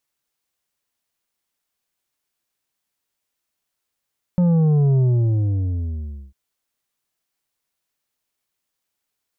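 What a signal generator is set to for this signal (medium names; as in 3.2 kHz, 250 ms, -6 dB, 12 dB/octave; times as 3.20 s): sub drop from 180 Hz, over 1.95 s, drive 7 dB, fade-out 1.35 s, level -14 dB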